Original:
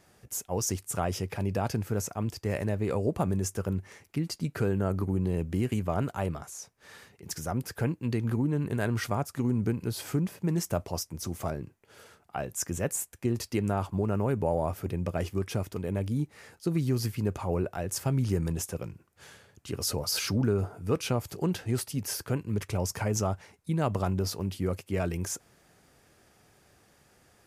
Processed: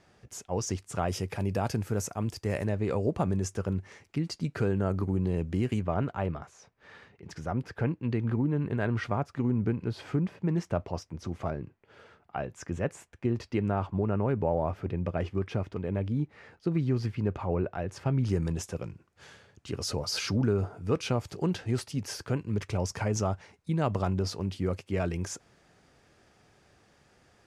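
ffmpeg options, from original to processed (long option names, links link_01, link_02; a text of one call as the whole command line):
ffmpeg -i in.wav -af "asetnsamples=nb_out_samples=441:pad=0,asendcmd='1.08 lowpass f 11000;2.67 lowpass f 6300;5.81 lowpass f 3000;18.25 lowpass f 6200',lowpass=5300" out.wav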